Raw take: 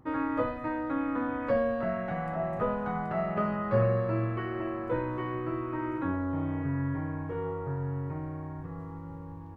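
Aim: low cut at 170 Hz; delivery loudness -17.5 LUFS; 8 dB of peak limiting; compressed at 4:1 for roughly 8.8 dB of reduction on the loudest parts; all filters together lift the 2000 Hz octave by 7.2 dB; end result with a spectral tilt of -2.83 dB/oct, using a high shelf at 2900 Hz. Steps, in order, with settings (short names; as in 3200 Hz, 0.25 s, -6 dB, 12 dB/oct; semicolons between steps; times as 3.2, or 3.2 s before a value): HPF 170 Hz; bell 2000 Hz +7 dB; high shelf 2900 Hz +6.5 dB; compressor 4:1, threshold -32 dBFS; gain +21 dB; limiter -9 dBFS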